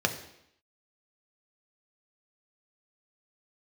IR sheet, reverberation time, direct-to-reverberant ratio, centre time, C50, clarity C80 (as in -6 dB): 0.75 s, 4.0 dB, 13 ms, 10.5 dB, 13.0 dB